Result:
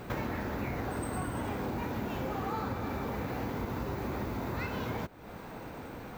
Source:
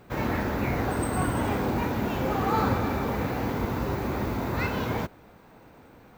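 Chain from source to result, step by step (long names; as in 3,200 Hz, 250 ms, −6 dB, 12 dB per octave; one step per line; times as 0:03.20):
downward compressor 5 to 1, threshold −43 dBFS, peak gain reduction 20 dB
level +8.5 dB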